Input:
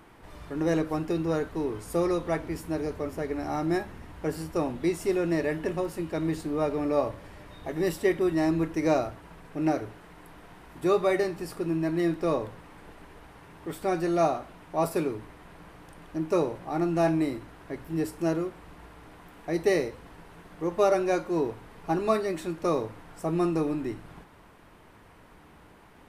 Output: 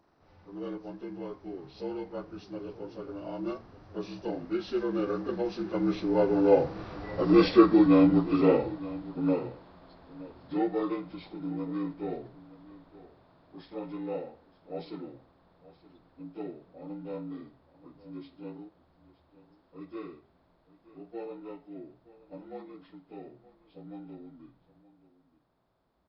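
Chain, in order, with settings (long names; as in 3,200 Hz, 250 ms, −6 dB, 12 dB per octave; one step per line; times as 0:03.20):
partials spread apart or drawn together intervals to 76%
source passing by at 0:07.28, 23 m/s, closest 17 metres
single-tap delay 921 ms −18 dB
level +8.5 dB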